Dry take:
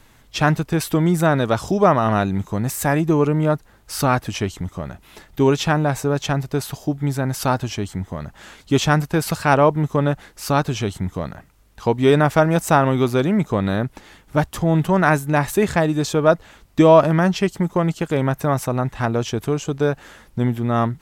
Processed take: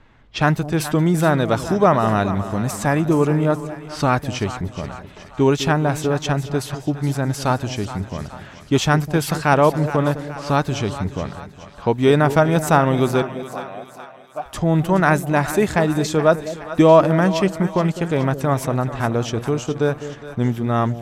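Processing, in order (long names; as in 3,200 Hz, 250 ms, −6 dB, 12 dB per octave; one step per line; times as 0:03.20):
low-pass that shuts in the quiet parts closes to 2,500 Hz, open at −16.5 dBFS
0:13.22–0:14.46: formant filter a
echo with a time of its own for lows and highs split 650 Hz, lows 205 ms, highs 422 ms, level −12 dB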